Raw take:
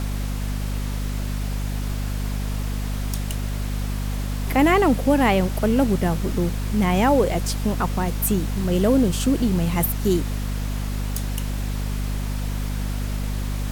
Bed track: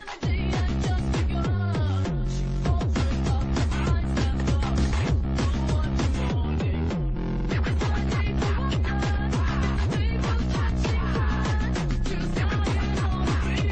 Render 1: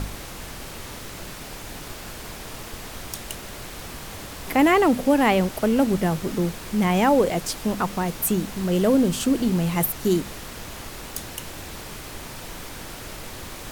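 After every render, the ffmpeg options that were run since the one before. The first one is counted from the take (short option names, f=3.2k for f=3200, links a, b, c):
-af "bandreject=f=50:t=h:w=4,bandreject=f=100:t=h:w=4,bandreject=f=150:t=h:w=4,bandreject=f=200:t=h:w=4,bandreject=f=250:t=h:w=4"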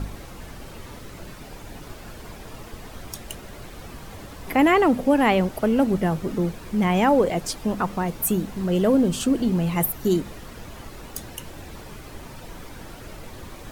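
-af "afftdn=nr=9:nf=-38"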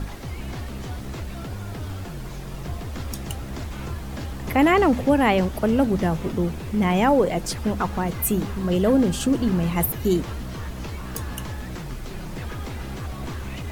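-filter_complex "[1:a]volume=-8.5dB[a];[0:a][a]amix=inputs=2:normalize=0"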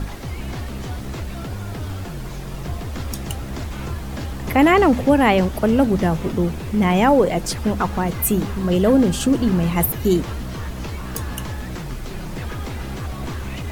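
-af "volume=3.5dB"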